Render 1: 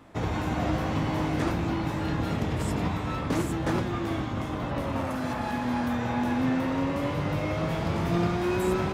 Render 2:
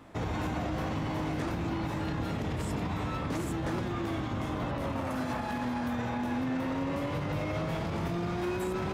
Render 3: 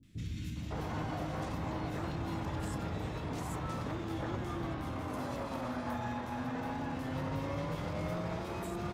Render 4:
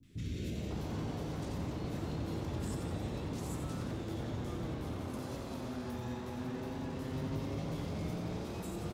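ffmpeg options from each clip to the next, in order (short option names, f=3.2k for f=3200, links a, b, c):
-af "alimiter=level_in=0.5dB:limit=-24dB:level=0:latency=1:release=61,volume=-0.5dB"
-filter_complex "[0:a]acrossover=split=260|2400[a][b][c];[c]adelay=30[d];[b]adelay=560[e];[a][e][d]amix=inputs=3:normalize=0,volume=-3.5dB"
-filter_complex "[0:a]acrossover=split=290|3000[a][b][c];[b]acompressor=threshold=-49dB:ratio=10[d];[a][d][c]amix=inputs=3:normalize=0,asplit=9[e][f][g][h][i][j][k][l][m];[f]adelay=89,afreqshift=130,volume=-7dB[n];[g]adelay=178,afreqshift=260,volume=-11.4dB[o];[h]adelay=267,afreqshift=390,volume=-15.9dB[p];[i]adelay=356,afreqshift=520,volume=-20.3dB[q];[j]adelay=445,afreqshift=650,volume=-24.7dB[r];[k]adelay=534,afreqshift=780,volume=-29.2dB[s];[l]adelay=623,afreqshift=910,volume=-33.6dB[t];[m]adelay=712,afreqshift=1040,volume=-38.1dB[u];[e][n][o][p][q][r][s][t][u]amix=inputs=9:normalize=0"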